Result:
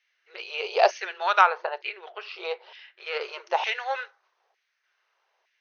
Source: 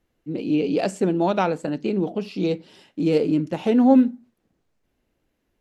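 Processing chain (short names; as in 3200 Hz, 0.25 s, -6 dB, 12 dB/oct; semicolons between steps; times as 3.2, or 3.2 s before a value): 1.41–3.21 air absorption 230 m; LFO high-pass saw down 1.1 Hz 770–2200 Hz; FFT band-pass 350–6500 Hz; gain +5 dB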